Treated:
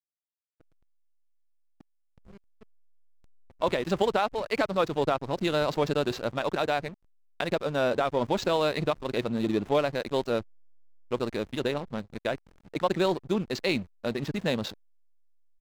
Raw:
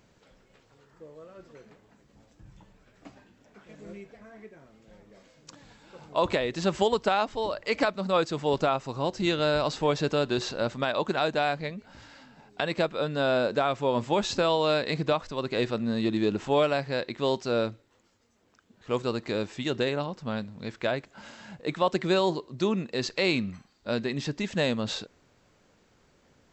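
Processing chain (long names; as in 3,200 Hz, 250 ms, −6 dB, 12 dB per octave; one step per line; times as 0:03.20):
tempo change 1.7×
slack as between gear wheels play −33.5 dBFS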